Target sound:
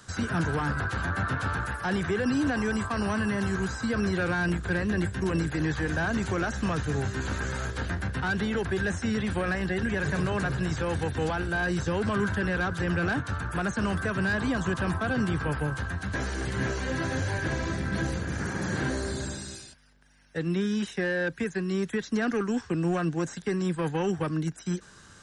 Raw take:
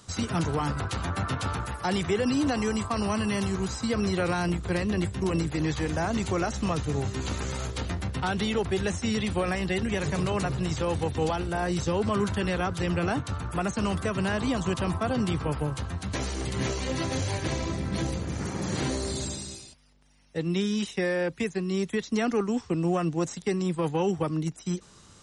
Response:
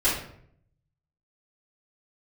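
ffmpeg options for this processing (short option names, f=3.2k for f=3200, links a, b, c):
-filter_complex "[0:a]equalizer=f=1.6k:w=4.6:g=15,acrossover=split=300|1700[a][b][c];[b]asoftclip=type=tanh:threshold=-26.5dB[d];[c]alimiter=level_in=10dB:limit=-24dB:level=0:latency=1:release=24,volume=-10dB[e];[a][d][e]amix=inputs=3:normalize=0"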